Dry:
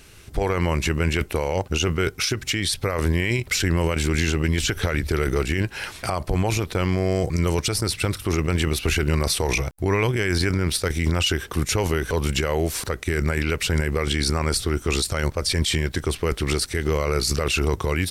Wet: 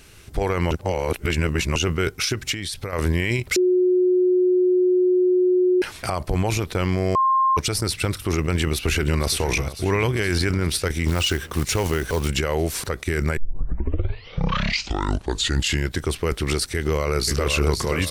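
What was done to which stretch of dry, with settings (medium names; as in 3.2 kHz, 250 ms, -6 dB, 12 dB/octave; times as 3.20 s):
0.71–1.76 s: reverse
2.52–2.93 s: compression 4:1, threshold -26 dBFS
3.56–5.82 s: bleep 364 Hz -14.5 dBFS
7.15–7.57 s: bleep 1.06 kHz -15 dBFS
8.46–9.37 s: echo throw 470 ms, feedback 75%, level -14.5 dB
11.08–12.28 s: short-mantissa float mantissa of 2-bit
13.37 s: tape start 2.59 s
16.75–17.53 s: echo throw 520 ms, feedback 40%, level -6 dB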